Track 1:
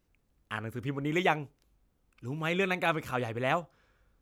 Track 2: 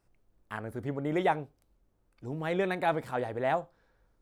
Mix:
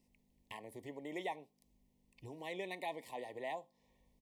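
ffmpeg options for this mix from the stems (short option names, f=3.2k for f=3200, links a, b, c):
-filter_complex "[0:a]acompressor=threshold=-39dB:ratio=6,volume=-5.5dB[a];[1:a]aeval=exprs='val(0)+0.00178*(sin(2*PI*50*n/s)+sin(2*PI*2*50*n/s)/2+sin(2*PI*3*50*n/s)/3+sin(2*PI*4*50*n/s)/4+sin(2*PI*5*50*n/s)/5)':c=same,highpass=f=190:w=0.5412,highpass=f=190:w=1.3066,tiltshelf=f=1.5k:g=-5.5,adelay=0.4,volume=-4.5dB,asplit=2[b][c];[c]apad=whole_len=185752[d];[a][d]sidechaincompress=threshold=-51dB:ratio=8:attack=16:release=276[e];[e][b]amix=inputs=2:normalize=0,asuperstop=centerf=1400:order=20:qfactor=2,acompressor=threshold=-48dB:ratio=1.5"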